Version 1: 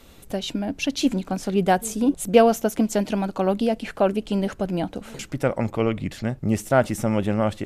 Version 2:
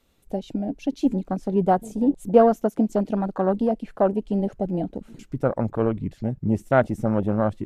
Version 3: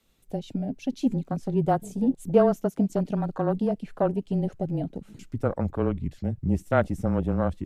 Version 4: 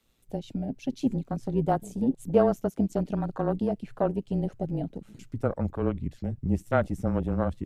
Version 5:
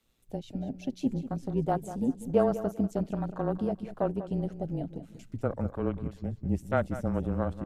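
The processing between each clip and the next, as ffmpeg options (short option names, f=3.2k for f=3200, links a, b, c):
-af "afwtdn=0.0501"
-af "equalizer=f=630:w=0.37:g=-4.5,afreqshift=-20"
-af "tremolo=f=120:d=0.462"
-af "aecho=1:1:193|386|579:0.224|0.0515|0.0118,volume=-3dB"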